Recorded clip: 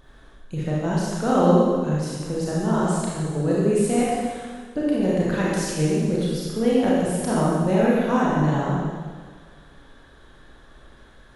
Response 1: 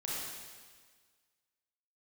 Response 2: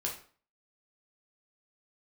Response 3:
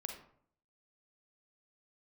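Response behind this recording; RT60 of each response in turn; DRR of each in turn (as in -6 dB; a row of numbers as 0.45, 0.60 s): 1; 1.6, 0.45, 0.60 s; -6.5, -2.5, 3.5 dB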